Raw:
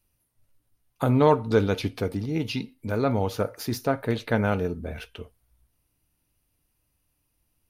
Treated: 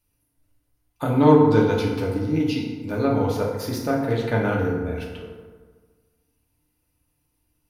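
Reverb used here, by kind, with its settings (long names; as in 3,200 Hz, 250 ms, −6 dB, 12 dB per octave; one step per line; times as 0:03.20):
feedback delay network reverb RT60 1.5 s, low-frequency decay 1.05×, high-frequency decay 0.5×, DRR −2.5 dB
level −2.5 dB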